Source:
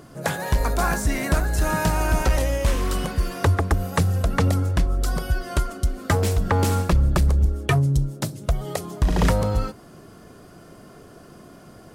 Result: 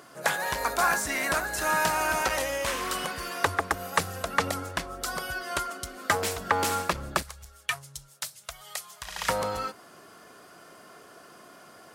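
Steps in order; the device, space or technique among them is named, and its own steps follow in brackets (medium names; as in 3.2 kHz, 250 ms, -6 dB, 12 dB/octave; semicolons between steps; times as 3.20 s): 7.22–9.29 s: amplifier tone stack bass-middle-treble 10-0-10; filter by subtraction (in parallel: low-pass 1.3 kHz 12 dB/octave + polarity flip)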